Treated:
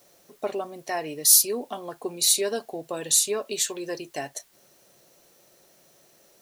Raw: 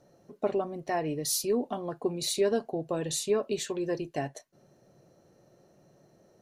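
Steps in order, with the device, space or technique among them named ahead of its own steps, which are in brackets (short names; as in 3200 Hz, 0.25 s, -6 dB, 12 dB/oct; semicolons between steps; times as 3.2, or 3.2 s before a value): turntable without a phono preamp (RIAA curve recording; white noise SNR 34 dB); gain +2 dB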